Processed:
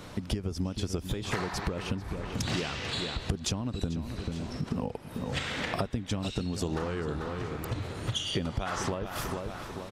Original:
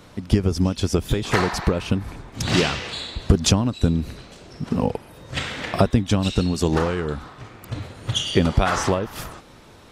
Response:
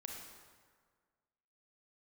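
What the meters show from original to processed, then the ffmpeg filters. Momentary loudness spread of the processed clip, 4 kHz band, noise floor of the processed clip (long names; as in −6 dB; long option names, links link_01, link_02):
4 LU, −8.5 dB, −44 dBFS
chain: -filter_complex "[0:a]asplit=2[link_01][link_02];[link_02]adelay=441,lowpass=frequency=3200:poles=1,volume=-13dB,asplit=2[link_03][link_04];[link_04]adelay=441,lowpass=frequency=3200:poles=1,volume=0.34,asplit=2[link_05][link_06];[link_06]adelay=441,lowpass=frequency=3200:poles=1,volume=0.34[link_07];[link_01][link_03][link_05][link_07]amix=inputs=4:normalize=0,acompressor=threshold=-32dB:ratio=5,volume=2dB"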